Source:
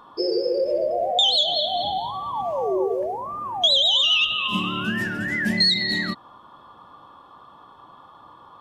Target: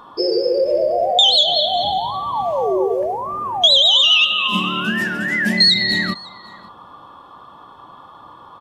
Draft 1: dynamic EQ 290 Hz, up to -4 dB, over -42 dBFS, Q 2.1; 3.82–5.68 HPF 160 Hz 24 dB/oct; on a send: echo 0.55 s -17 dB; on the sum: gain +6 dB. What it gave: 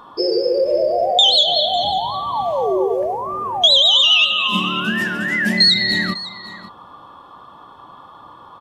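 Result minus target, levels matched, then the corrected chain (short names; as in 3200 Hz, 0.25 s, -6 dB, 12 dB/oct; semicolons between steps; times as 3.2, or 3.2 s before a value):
echo-to-direct +7.5 dB
dynamic EQ 290 Hz, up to -4 dB, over -42 dBFS, Q 2.1; 3.82–5.68 HPF 160 Hz 24 dB/oct; on a send: echo 0.55 s -24.5 dB; on the sum: gain +6 dB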